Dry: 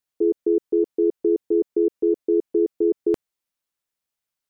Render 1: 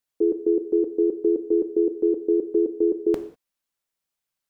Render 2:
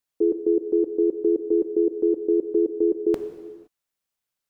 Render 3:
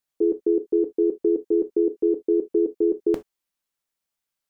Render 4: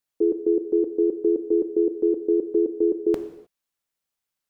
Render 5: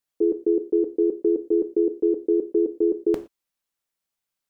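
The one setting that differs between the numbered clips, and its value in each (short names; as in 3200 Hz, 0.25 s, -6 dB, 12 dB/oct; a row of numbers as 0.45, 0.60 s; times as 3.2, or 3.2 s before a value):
non-linear reverb, gate: 220, 540, 90, 330, 140 ms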